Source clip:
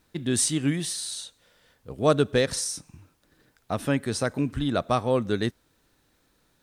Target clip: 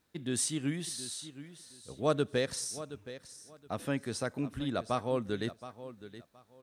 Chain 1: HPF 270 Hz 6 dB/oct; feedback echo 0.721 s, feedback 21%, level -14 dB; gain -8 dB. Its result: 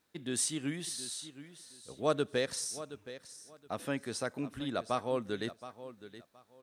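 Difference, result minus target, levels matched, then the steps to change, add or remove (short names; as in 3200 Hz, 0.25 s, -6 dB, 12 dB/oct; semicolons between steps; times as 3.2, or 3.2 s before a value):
125 Hz band -4.5 dB
change: HPF 81 Hz 6 dB/oct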